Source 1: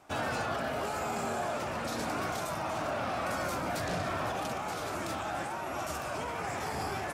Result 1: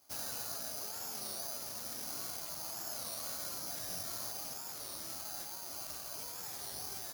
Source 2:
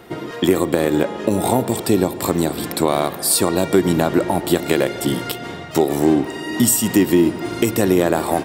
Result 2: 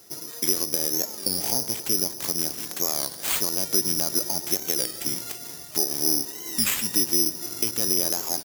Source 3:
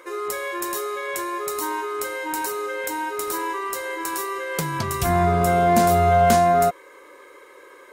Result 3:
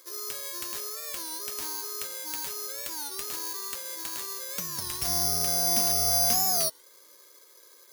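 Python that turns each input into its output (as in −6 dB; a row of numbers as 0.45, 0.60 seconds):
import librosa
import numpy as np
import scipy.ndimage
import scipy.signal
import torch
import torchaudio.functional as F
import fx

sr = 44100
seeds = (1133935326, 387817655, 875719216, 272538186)

y = (np.kron(x[::8], np.eye(8)[0]) * 8)[:len(x)]
y = fx.record_warp(y, sr, rpm=33.33, depth_cents=160.0)
y = y * librosa.db_to_amplitude(-17.0)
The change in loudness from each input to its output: −5.0, −5.0, −5.0 LU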